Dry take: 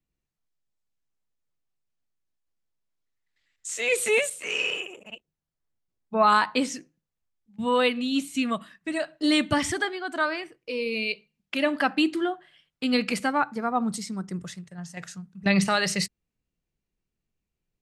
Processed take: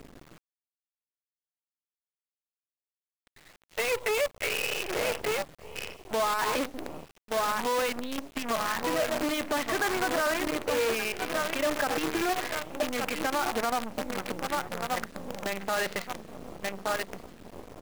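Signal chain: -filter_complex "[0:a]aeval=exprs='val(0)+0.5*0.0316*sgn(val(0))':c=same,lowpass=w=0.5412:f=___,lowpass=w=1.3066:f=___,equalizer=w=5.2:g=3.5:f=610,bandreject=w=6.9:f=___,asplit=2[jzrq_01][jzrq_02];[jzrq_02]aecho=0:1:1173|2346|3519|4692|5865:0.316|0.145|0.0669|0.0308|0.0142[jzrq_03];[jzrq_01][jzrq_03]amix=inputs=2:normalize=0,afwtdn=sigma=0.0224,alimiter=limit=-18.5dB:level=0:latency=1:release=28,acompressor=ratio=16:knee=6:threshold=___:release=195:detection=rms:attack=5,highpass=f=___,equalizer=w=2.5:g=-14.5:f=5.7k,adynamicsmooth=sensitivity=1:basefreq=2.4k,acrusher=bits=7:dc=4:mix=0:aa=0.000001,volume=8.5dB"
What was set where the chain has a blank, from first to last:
8k, 8k, 5.8k, -29dB, 410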